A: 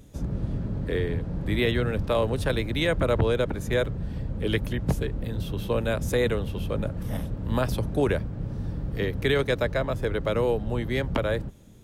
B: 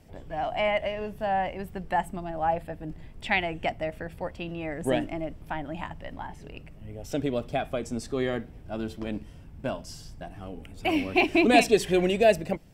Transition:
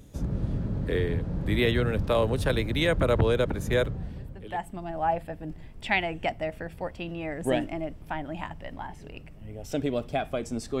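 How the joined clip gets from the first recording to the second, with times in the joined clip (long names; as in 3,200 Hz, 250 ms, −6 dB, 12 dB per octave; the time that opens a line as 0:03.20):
A
0:04.36: continue with B from 0:01.76, crossfade 1.08 s quadratic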